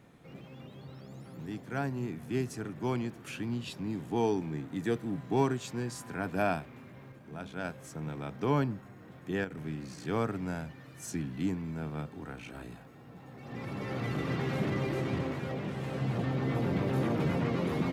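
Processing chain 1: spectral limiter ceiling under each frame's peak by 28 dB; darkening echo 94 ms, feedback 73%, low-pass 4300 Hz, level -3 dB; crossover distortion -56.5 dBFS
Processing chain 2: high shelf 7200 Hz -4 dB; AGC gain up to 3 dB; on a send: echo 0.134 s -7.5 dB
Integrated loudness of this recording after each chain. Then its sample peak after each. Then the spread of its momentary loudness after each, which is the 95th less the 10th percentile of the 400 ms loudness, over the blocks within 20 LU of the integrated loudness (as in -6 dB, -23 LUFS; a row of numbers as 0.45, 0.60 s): -31.0, -30.5 LUFS; -11.5, -12.5 dBFS; 17, 17 LU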